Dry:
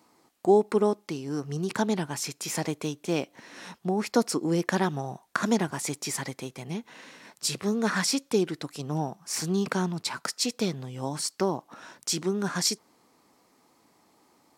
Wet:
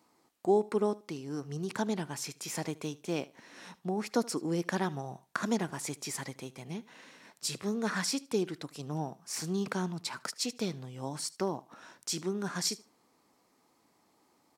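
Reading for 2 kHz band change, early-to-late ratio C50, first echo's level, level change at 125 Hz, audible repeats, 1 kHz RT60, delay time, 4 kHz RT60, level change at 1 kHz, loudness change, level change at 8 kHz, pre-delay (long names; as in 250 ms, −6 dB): −6.0 dB, no reverb audible, −21.0 dB, −6.0 dB, 2, no reverb audible, 76 ms, no reverb audible, −6.0 dB, −6.0 dB, −6.0 dB, no reverb audible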